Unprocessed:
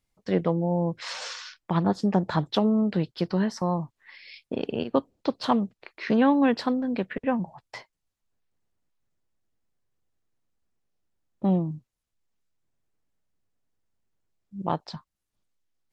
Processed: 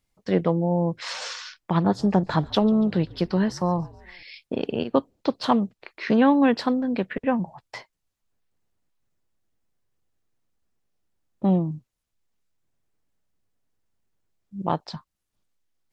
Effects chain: 1.6–4.23 frequency-shifting echo 0.142 s, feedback 60%, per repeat -57 Hz, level -23 dB; gain +2.5 dB

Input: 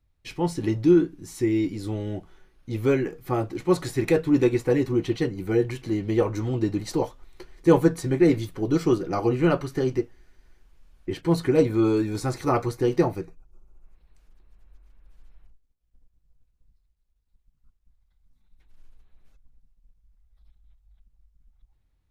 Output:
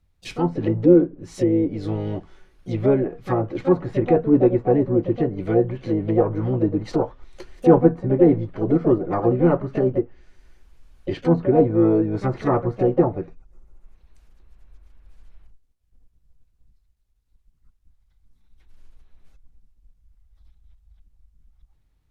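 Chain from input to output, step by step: harmoniser +7 st -9 dB; treble ducked by the level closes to 990 Hz, closed at -20.5 dBFS; gain +3.5 dB

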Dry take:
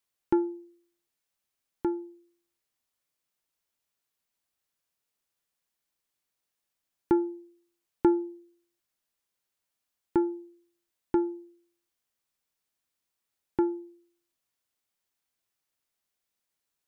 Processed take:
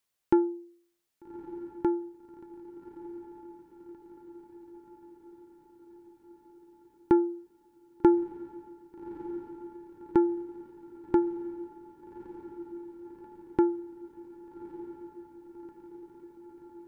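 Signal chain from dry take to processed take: diffused feedback echo 1.209 s, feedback 66%, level -14 dB; gain +2 dB

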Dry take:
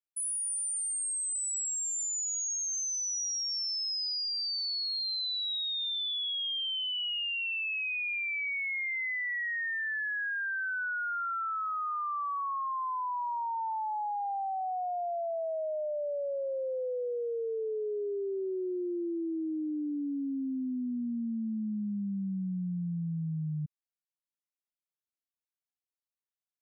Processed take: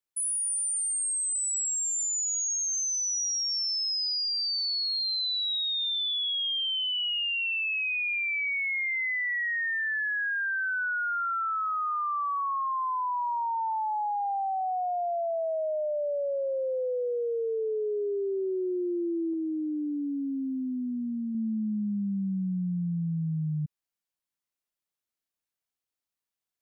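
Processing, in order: 19.33–21.35 dynamic EQ 140 Hz, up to -5 dB, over -52 dBFS, Q 0.96; gain +4 dB

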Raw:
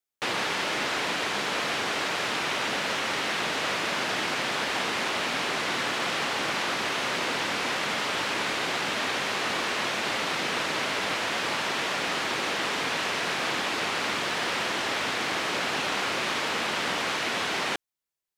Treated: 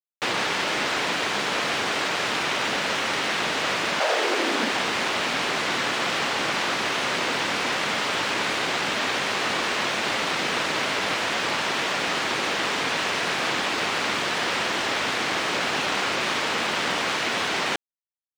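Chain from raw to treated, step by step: spectral gate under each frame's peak -30 dB strong; crossover distortion -48 dBFS; 3.99–4.71 resonant high-pass 650 Hz -> 210 Hz, resonance Q 3.6; gain +4 dB

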